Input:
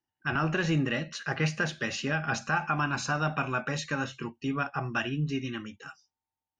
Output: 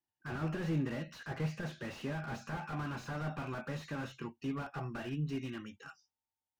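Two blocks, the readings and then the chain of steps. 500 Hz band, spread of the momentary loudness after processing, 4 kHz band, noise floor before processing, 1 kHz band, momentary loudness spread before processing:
-8.0 dB, 9 LU, -13.5 dB, under -85 dBFS, -12.0 dB, 8 LU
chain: slew limiter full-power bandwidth 21 Hz; gain -6 dB

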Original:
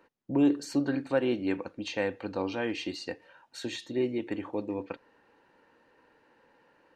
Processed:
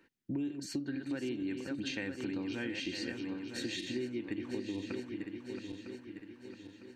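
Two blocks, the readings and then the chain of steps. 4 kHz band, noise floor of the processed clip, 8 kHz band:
-1.5 dB, -58 dBFS, -1.5 dB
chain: regenerating reverse delay 0.477 s, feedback 67%, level -7.5 dB; band shelf 760 Hz -12 dB; compressor 16:1, threshold -33 dBFS, peak gain reduction 14 dB

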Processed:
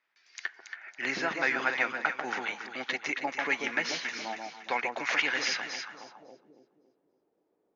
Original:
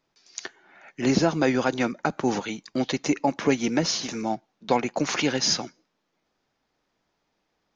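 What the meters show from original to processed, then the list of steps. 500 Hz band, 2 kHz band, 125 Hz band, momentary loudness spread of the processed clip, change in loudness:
-11.0 dB, +4.5 dB, -22.5 dB, 12 LU, -5.5 dB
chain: echo with dull and thin repeats by turns 0.139 s, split 920 Hz, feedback 61%, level -3 dB; band-pass sweep 1900 Hz -> 400 Hz, 5.8–6.45; gain +5.5 dB

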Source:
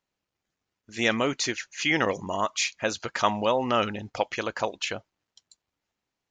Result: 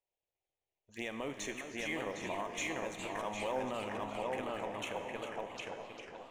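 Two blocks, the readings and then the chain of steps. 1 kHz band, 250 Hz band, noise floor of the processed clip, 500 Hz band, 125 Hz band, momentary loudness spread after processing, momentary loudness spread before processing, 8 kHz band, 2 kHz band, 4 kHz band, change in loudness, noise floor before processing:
-11.5 dB, -11.5 dB, under -85 dBFS, -10.0 dB, -12.5 dB, 7 LU, 7 LU, -12.5 dB, -12.0 dB, -14.5 dB, -12.5 dB, under -85 dBFS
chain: Wiener smoothing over 9 samples; darkening echo 0.757 s, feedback 29%, low-pass 4300 Hz, level -4 dB; in parallel at -12 dB: Schmitt trigger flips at -19 dBFS; on the sum: compressor 1.5:1, threshold -34 dBFS, peak gain reduction 6.5 dB; low shelf 410 Hz -9 dB; Schroeder reverb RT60 3.2 s, combs from 33 ms, DRR 14.5 dB; envelope phaser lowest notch 230 Hz, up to 4800 Hz, full sweep at -36.5 dBFS; limiter -24 dBFS, peak gain reduction 9 dB; bell 1400 Hz -11 dB 0.46 oct; notches 60/120 Hz; resonator 64 Hz, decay 1.8 s, harmonics all, mix 70%; warbling echo 0.407 s, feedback 58%, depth 214 cents, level -9 dB; gain +7.5 dB

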